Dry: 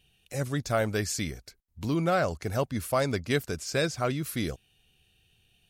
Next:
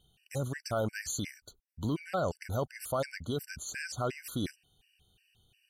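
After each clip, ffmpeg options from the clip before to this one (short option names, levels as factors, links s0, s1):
-af "alimiter=limit=0.0794:level=0:latency=1:release=20,afftfilt=real='re*gt(sin(2*PI*2.8*pts/sr)*(1-2*mod(floor(b*sr/1024/1500),2)),0)':imag='im*gt(sin(2*PI*2.8*pts/sr)*(1-2*mod(floor(b*sr/1024/1500),2)),0)':win_size=1024:overlap=0.75"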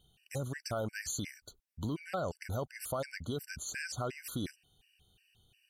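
-af "acompressor=threshold=0.0178:ratio=2"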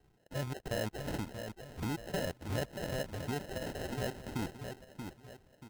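-filter_complex "[0:a]asplit=2[s0][s1];[s1]adelay=632,lowpass=f=3200:p=1,volume=0.447,asplit=2[s2][s3];[s3]adelay=632,lowpass=f=3200:p=1,volume=0.38,asplit=2[s4][s5];[s5]adelay=632,lowpass=f=3200:p=1,volume=0.38,asplit=2[s6][s7];[s7]adelay=632,lowpass=f=3200:p=1,volume=0.38[s8];[s2][s4][s6][s8]amix=inputs=4:normalize=0[s9];[s0][s9]amix=inputs=2:normalize=0,acrusher=samples=38:mix=1:aa=0.000001"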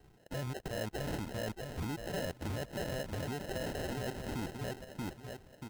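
-af "acompressor=threshold=0.0141:ratio=6,alimiter=level_in=4.73:limit=0.0631:level=0:latency=1:release=27,volume=0.211,volume=2.11"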